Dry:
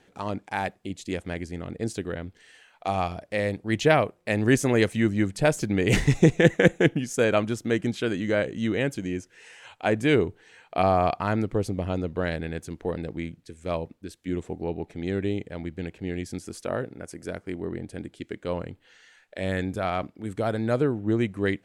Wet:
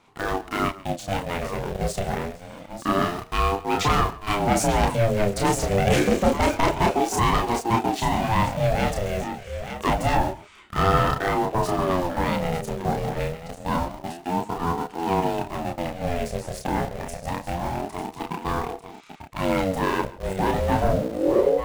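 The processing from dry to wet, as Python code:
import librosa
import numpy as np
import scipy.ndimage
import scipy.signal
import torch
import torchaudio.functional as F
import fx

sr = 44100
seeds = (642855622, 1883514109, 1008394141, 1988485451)

p1 = fx.tape_stop_end(x, sr, length_s=0.97)
p2 = fx.quant_dither(p1, sr, seeds[0], bits=6, dither='none')
p3 = p1 + (p2 * 10.0 ** (-3.0 / 20.0))
p4 = 10.0 ** (-16.5 / 20.0) * np.tanh(p3 / 10.0 ** (-16.5 / 20.0))
p5 = fx.doubler(p4, sr, ms=31.0, db=-3.5)
p6 = p5 + fx.echo_multitap(p5, sr, ms=(43, 139, 895), db=(-17.5, -19.0, -10.5), dry=0)
p7 = fx.ring_lfo(p6, sr, carrier_hz=440.0, swing_pct=35, hz=0.27)
y = p7 * 10.0 ** (2.5 / 20.0)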